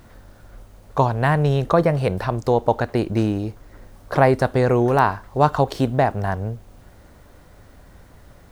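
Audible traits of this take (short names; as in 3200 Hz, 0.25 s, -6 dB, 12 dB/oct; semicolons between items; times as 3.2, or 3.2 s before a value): noise floor -48 dBFS; spectral tilt -5.0 dB/oct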